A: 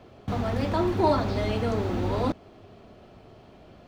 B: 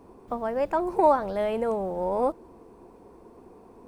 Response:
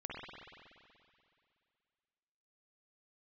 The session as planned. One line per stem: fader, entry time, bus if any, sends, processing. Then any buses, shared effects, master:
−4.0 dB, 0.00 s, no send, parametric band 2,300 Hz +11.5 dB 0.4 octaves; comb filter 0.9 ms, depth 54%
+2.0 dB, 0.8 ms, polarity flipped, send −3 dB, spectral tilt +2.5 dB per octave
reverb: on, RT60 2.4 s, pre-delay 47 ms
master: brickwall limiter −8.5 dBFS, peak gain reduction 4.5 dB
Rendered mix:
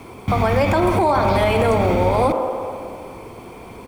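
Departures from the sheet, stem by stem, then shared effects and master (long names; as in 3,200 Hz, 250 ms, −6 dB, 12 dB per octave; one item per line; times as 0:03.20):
stem A −4.0 dB → +6.5 dB
stem B +2.0 dB → +10.5 dB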